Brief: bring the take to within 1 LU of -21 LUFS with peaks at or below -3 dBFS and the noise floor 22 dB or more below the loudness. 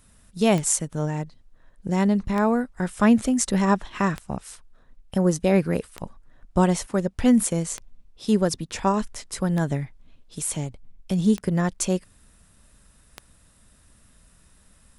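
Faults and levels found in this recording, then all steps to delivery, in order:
clicks 9; loudness -23.5 LUFS; peak -4.0 dBFS; loudness target -21.0 LUFS
-> de-click; gain +2.5 dB; limiter -3 dBFS

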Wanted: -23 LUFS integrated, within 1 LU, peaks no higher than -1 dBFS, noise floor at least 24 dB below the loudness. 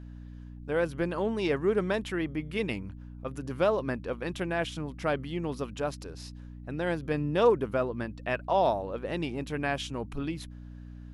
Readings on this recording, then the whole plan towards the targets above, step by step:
hum 60 Hz; harmonics up to 300 Hz; hum level -41 dBFS; loudness -30.5 LUFS; peak -11.5 dBFS; loudness target -23.0 LUFS
-> de-hum 60 Hz, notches 5; gain +7.5 dB

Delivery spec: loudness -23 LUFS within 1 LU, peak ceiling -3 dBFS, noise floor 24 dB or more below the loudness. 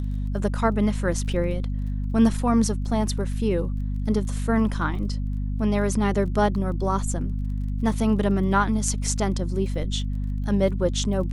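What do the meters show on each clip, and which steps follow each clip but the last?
ticks 21/s; hum 50 Hz; harmonics up to 250 Hz; hum level -24 dBFS; loudness -24.5 LUFS; peak -7.5 dBFS; loudness target -23.0 LUFS
-> de-click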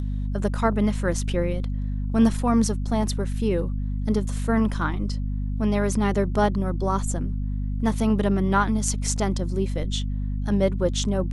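ticks 0.18/s; hum 50 Hz; harmonics up to 250 Hz; hum level -24 dBFS
-> de-hum 50 Hz, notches 5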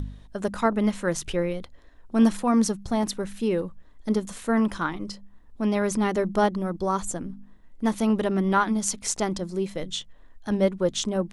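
hum none; loudness -26.0 LUFS; peak -8.5 dBFS; loudness target -23.0 LUFS
-> gain +3 dB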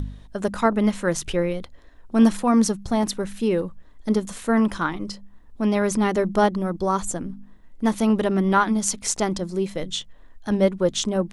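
loudness -23.0 LUFS; peak -5.5 dBFS; noise floor -47 dBFS

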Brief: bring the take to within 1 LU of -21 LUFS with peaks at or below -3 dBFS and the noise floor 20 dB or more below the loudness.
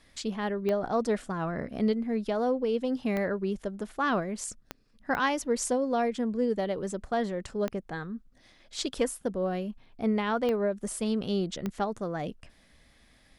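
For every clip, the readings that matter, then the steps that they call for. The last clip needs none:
clicks 7; loudness -30.5 LUFS; peak -14.5 dBFS; loudness target -21.0 LUFS
-> de-click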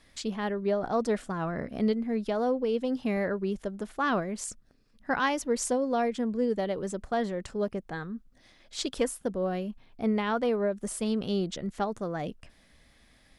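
clicks 0; loudness -30.5 LUFS; peak -14.5 dBFS; loudness target -21.0 LUFS
-> gain +9.5 dB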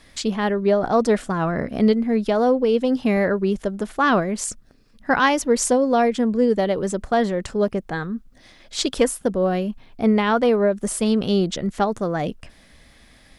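loudness -21.0 LUFS; peak -5.0 dBFS; noise floor -52 dBFS

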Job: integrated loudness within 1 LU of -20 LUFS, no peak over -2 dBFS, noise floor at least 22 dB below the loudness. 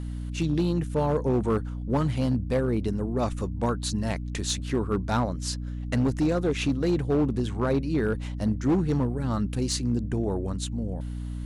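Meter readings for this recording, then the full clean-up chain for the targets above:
clipped 1.8%; flat tops at -18.0 dBFS; hum 60 Hz; harmonics up to 300 Hz; hum level -30 dBFS; loudness -27.0 LUFS; peak -18.0 dBFS; loudness target -20.0 LUFS
-> clip repair -18 dBFS; notches 60/120/180/240/300 Hz; gain +7 dB

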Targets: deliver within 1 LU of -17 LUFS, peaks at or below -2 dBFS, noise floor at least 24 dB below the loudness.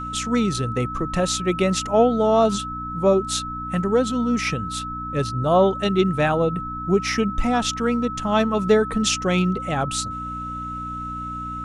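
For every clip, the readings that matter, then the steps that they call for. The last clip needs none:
hum 60 Hz; harmonics up to 300 Hz; hum level -32 dBFS; steady tone 1300 Hz; tone level -29 dBFS; loudness -22.0 LUFS; peak -5.5 dBFS; loudness target -17.0 LUFS
-> de-hum 60 Hz, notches 5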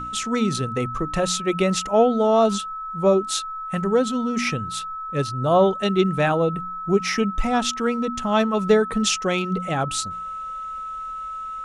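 hum none; steady tone 1300 Hz; tone level -29 dBFS
-> notch 1300 Hz, Q 30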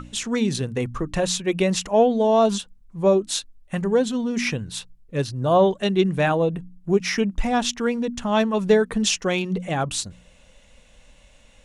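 steady tone none; loudness -22.0 LUFS; peak -6.0 dBFS; loudness target -17.0 LUFS
-> gain +5 dB; limiter -2 dBFS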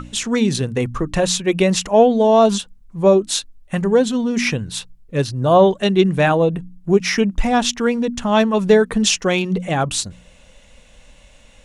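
loudness -17.5 LUFS; peak -2.0 dBFS; noise floor -48 dBFS

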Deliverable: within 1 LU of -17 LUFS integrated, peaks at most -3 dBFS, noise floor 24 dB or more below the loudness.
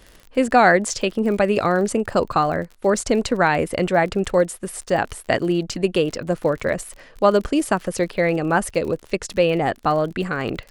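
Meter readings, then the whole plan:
ticks 43/s; loudness -20.5 LUFS; peak -2.5 dBFS; loudness target -17.0 LUFS
-> de-click; gain +3.5 dB; limiter -3 dBFS

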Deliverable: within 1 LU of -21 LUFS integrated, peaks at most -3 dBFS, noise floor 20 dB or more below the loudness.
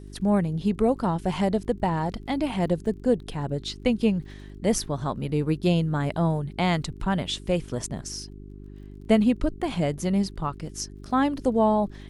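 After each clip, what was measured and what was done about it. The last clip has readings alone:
ticks 30/s; hum 50 Hz; harmonics up to 400 Hz; hum level -41 dBFS; loudness -26.0 LUFS; peak -6.0 dBFS; loudness target -21.0 LUFS
-> de-click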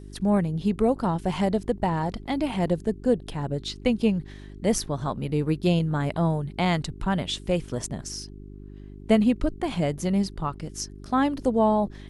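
ticks 0/s; hum 50 Hz; harmonics up to 400 Hz; hum level -41 dBFS
-> de-hum 50 Hz, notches 8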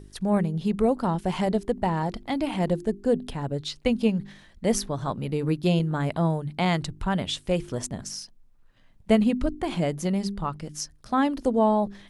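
hum none; loudness -26.5 LUFS; peak -6.0 dBFS; loudness target -21.0 LUFS
-> gain +5.5 dB; limiter -3 dBFS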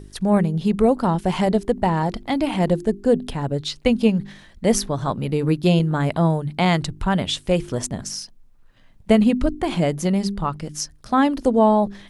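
loudness -21.0 LUFS; peak -3.0 dBFS; noise floor -49 dBFS

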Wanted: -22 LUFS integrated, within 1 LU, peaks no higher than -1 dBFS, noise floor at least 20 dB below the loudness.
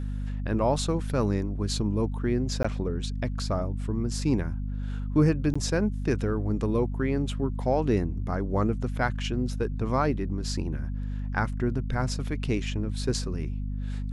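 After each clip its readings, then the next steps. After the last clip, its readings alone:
dropouts 2; longest dropout 15 ms; hum 50 Hz; harmonics up to 250 Hz; hum level -28 dBFS; loudness -28.5 LUFS; peak -10.5 dBFS; loudness target -22.0 LUFS
-> interpolate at 2.63/5.54, 15 ms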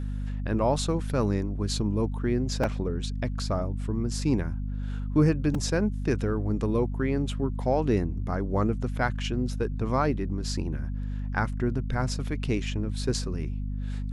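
dropouts 0; hum 50 Hz; harmonics up to 250 Hz; hum level -28 dBFS
-> de-hum 50 Hz, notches 5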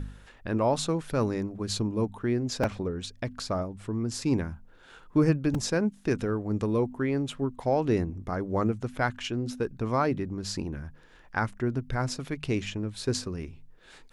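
hum none; loudness -29.5 LUFS; peak -11.0 dBFS; loudness target -22.0 LUFS
-> gain +7.5 dB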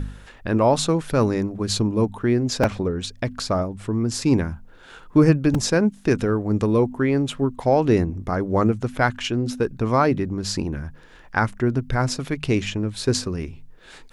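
loudness -22.0 LUFS; peak -3.5 dBFS; noise floor -47 dBFS

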